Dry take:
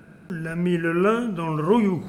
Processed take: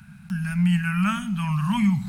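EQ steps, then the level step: Chebyshev band-stop 200–810 Hz, order 3; peaking EQ 820 Hz -10 dB 2.1 oct; +6.0 dB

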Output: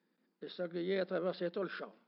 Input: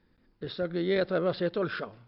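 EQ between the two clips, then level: elliptic high-pass 180 Hz, stop band 40 dB; -8.0 dB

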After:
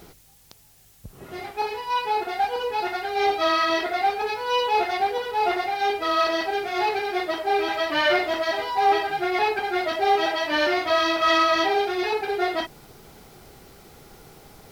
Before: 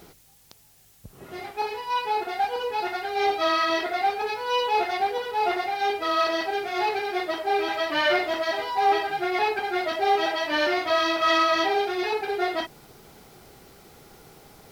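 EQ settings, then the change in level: bass shelf 76 Hz +6 dB; +1.5 dB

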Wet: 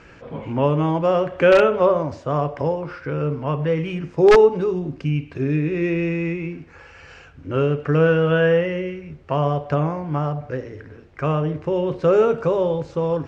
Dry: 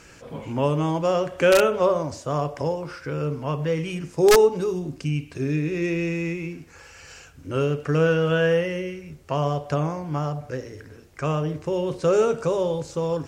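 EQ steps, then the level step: low-pass 2.7 kHz 12 dB/octave; +3.5 dB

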